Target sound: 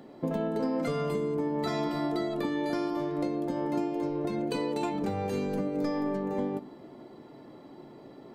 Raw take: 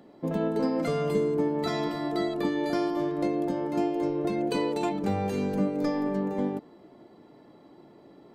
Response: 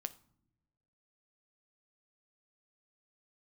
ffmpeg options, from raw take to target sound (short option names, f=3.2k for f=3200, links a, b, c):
-filter_complex "[0:a]acompressor=threshold=-31dB:ratio=6[a];[1:a]atrim=start_sample=2205[b];[a][b]afir=irnorm=-1:irlink=0,volume=6dB"